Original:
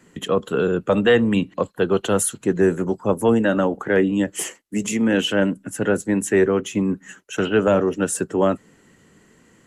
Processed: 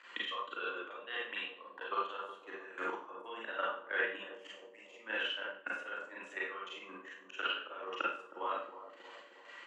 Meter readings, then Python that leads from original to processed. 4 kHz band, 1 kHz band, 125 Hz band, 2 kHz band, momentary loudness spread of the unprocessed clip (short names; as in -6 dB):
-10.5 dB, -10.5 dB, under -40 dB, -10.5 dB, 8 LU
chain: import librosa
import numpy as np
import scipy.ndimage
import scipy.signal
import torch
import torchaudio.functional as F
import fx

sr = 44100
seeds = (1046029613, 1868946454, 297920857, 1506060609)

p1 = np.diff(x, prepend=0.0)
p2 = fx.transient(p1, sr, attack_db=12, sustain_db=-10)
p3 = fx.level_steps(p2, sr, step_db=13)
p4 = fx.auto_swell(p3, sr, attack_ms=503.0)
p5 = fx.over_compress(p4, sr, threshold_db=-50.0, ratio=-1.0)
p6 = fx.chopper(p5, sr, hz=1.8, depth_pct=60, duty_pct=50)
p7 = fx.cabinet(p6, sr, low_hz=350.0, low_slope=24, high_hz=3100.0, hz=(410.0, 700.0, 1100.0, 2000.0), db=(-8, -3, 8, -3))
p8 = p7 + fx.echo_bbd(p7, sr, ms=315, stages=2048, feedback_pct=63, wet_db=-12.0, dry=0)
p9 = fx.rev_schroeder(p8, sr, rt60_s=0.45, comb_ms=32, drr_db=-5.5)
y = p9 * librosa.db_to_amplitude(12.0)